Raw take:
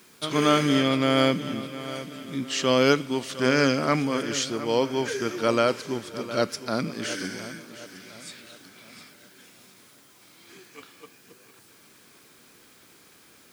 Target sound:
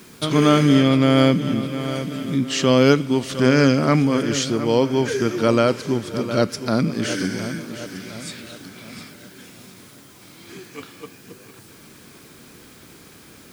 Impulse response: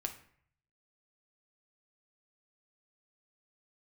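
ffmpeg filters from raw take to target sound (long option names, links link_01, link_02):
-filter_complex "[0:a]lowshelf=frequency=300:gain=11,asplit=2[link_01][link_02];[link_02]acompressor=threshold=-30dB:ratio=6,volume=1.5dB[link_03];[link_01][link_03]amix=inputs=2:normalize=0"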